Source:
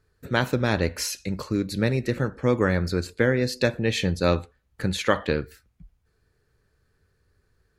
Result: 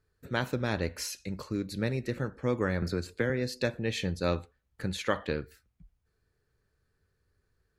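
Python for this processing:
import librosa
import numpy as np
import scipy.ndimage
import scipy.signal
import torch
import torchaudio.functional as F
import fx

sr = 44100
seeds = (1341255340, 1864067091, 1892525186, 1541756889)

y = fx.band_squash(x, sr, depth_pct=70, at=(2.82, 3.3))
y = F.gain(torch.from_numpy(y), -7.5).numpy()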